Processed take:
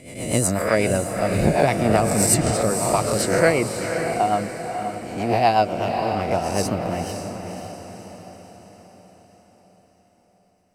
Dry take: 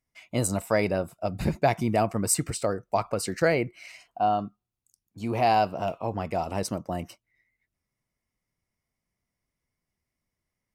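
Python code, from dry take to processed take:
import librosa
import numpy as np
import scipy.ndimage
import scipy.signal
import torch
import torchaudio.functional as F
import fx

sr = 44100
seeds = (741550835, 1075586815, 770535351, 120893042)

y = fx.spec_swells(x, sr, rise_s=0.79)
y = fx.rotary(y, sr, hz=8.0)
y = fx.echo_diffused(y, sr, ms=536, feedback_pct=50, wet_db=-7.0)
y = F.gain(torch.from_numpy(y), 5.5).numpy()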